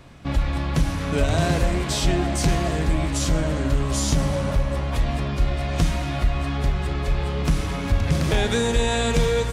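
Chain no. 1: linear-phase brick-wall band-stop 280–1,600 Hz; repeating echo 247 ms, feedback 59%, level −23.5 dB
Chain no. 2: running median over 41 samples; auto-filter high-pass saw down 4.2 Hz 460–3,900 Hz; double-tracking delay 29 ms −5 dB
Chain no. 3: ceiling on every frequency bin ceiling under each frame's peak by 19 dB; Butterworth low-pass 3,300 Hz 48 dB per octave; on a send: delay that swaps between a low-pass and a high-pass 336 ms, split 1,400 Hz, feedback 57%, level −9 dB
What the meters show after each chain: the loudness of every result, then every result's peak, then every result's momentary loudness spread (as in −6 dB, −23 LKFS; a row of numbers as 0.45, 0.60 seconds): −24.5, −32.0, −22.0 LKFS; −10.0, −11.0, −5.5 dBFS; 3, 10, 3 LU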